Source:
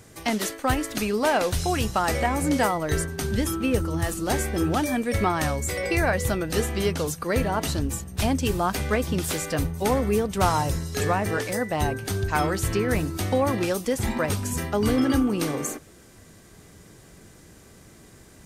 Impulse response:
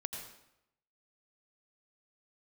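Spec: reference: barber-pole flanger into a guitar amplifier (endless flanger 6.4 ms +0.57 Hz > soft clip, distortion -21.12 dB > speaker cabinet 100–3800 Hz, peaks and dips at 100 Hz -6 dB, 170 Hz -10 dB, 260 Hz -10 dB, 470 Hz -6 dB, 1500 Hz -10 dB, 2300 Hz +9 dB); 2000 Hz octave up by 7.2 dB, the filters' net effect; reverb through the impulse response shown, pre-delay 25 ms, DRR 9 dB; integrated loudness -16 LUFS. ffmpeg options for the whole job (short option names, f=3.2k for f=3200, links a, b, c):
-filter_complex "[0:a]equalizer=f=2k:t=o:g=7,asplit=2[a][b];[1:a]atrim=start_sample=2205,adelay=25[c];[b][c]afir=irnorm=-1:irlink=0,volume=-9dB[d];[a][d]amix=inputs=2:normalize=0,asplit=2[e][f];[f]adelay=6.4,afreqshift=0.57[g];[e][g]amix=inputs=2:normalize=1,asoftclip=threshold=-15dB,highpass=100,equalizer=f=100:t=q:w=4:g=-6,equalizer=f=170:t=q:w=4:g=-10,equalizer=f=260:t=q:w=4:g=-10,equalizer=f=470:t=q:w=4:g=-6,equalizer=f=1.5k:t=q:w=4:g=-10,equalizer=f=2.3k:t=q:w=4:g=9,lowpass=f=3.8k:w=0.5412,lowpass=f=3.8k:w=1.3066,volume=12.5dB"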